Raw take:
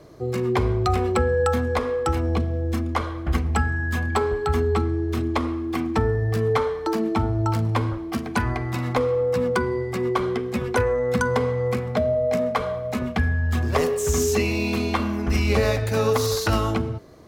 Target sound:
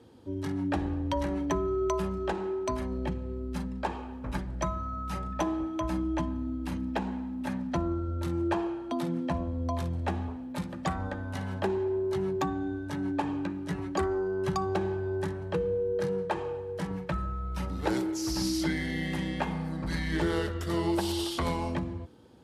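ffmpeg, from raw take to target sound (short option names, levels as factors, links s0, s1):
-af "highpass=98,asetrate=33957,aresample=44100,volume=0.422"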